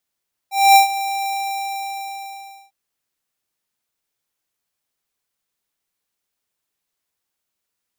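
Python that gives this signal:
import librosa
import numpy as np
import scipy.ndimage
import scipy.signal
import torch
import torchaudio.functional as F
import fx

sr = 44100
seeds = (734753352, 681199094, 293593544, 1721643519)

y = fx.adsr_tone(sr, wave='square', hz=787.0, attack_ms=243.0, decay_ms=119.0, sustain_db=-15.0, held_s=0.77, release_ms=1430.0, level_db=-8.0)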